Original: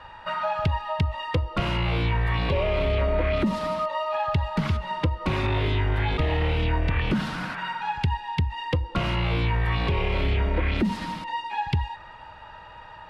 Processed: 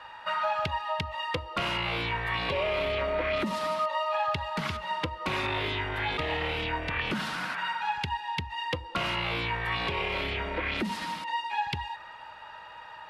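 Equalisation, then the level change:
spectral tilt +4 dB per octave
high-shelf EQ 2,900 Hz −10.5 dB
0.0 dB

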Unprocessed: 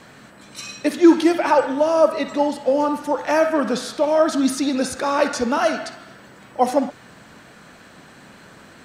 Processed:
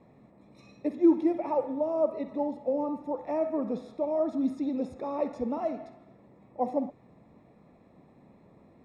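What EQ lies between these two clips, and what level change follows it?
moving average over 29 samples
−8.5 dB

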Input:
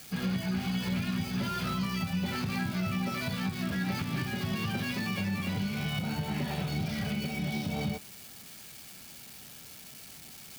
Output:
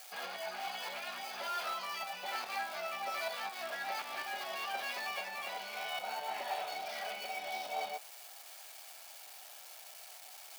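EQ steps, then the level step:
four-pole ladder high-pass 610 Hz, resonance 55%
+6.5 dB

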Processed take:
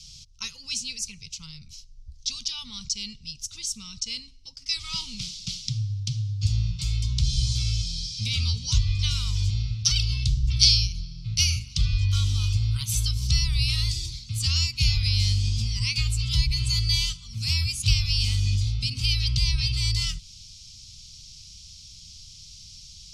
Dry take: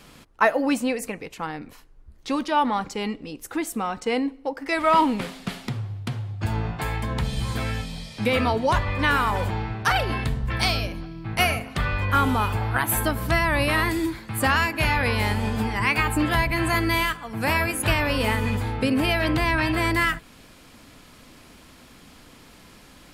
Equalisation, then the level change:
Chebyshev band-stop filter 110–3,800 Hz, order 2
low-pass with resonance 5,700 Hz, resonance Q 3.9
phaser with its sweep stopped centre 710 Hz, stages 4
+5.5 dB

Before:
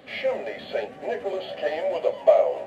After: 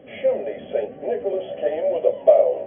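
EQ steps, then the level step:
linear-phase brick-wall low-pass 3,400 Hz
low shelf with overshoot 740 Hz +9 dB, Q 1.5
−5.5 dB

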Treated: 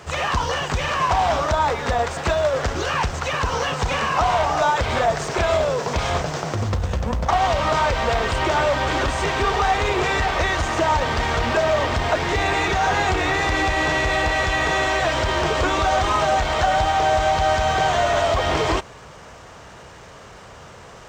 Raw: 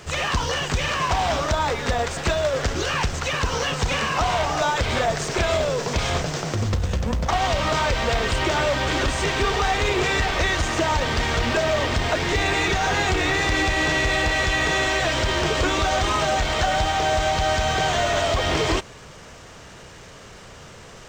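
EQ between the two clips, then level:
high-pass filter 41 Hz
low-shelf EQ 110 Hz +5.5 dB
parametric band 890 Hz +7.5 dB 1.9 octaves
−3.0 dB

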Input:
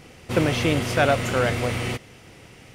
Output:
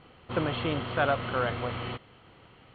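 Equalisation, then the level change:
Chebyshev low-pass with heavy ripple 4,400 Hz, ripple 9 dB
high-frequency loss of the air 210 metres
0.0 dB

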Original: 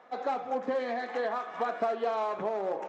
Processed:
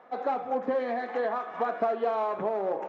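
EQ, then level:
low-pass filter 1,800 Hz 6 dB per octave
+3.0 dB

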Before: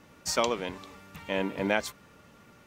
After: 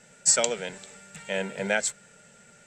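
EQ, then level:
low-pass with resonance 7,800 Hz, resonance Q 13
parametric band 1,400 Hz +13.5 dB 0.91 octaves
phaser with its sweep stopped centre 300 Hz, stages 6
0.0 dB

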